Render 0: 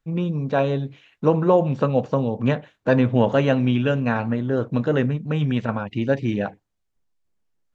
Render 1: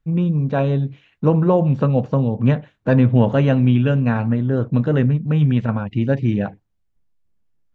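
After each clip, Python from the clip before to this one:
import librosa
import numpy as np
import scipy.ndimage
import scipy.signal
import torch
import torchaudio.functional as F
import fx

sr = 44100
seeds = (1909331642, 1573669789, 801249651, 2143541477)

y = fx.bass_treble(x, sr, bass_db=9, treble_db=-5)
y = y * librosa.db_to_amplitude(-1.0)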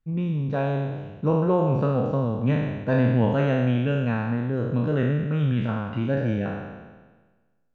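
y = fx.spec_trails(x, sr, decay_s=1.37)
y = y * librosa.db_to_amplitude(-8.0)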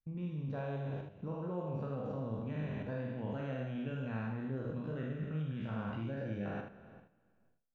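y = fx.level_steps(x, sr, step_db=17)
y = fx.room_early_taps(y, sr, ms=(45, 78), db=(-6.5, -7.0))
y = y * librosa.db_to_amplitude(-6.0)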